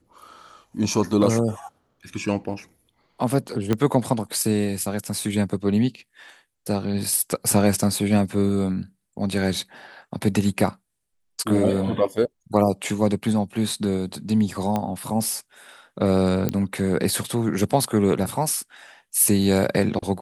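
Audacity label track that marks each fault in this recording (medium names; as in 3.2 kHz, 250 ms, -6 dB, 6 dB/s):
3.730000	3.730000	pop -9 dBFS
14.760000	14.760000	pop -12 dBFS
16.490000	16.490000	pop -9 dBFS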